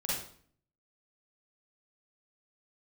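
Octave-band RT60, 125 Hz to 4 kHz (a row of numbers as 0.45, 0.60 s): 0.80, 0.70, 0.55, 0.50, 0.50, 0.45 s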